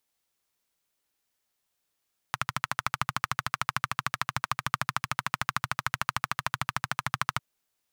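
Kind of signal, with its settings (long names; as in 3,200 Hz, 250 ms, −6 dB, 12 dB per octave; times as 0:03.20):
pulse-train model of a single-cylinder engine, steady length 5.05 s, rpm 1,600, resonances 130/1,200 Hz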